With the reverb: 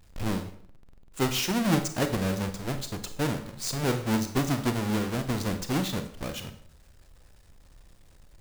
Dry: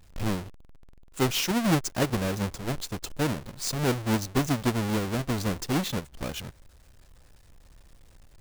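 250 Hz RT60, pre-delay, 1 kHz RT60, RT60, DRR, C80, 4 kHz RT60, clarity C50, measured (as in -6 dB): 0.65 s, 29 ms, 0.55 s, 0.55 s, 8.0 dB, 14.0 dB, 0.50 s, 10.5 dB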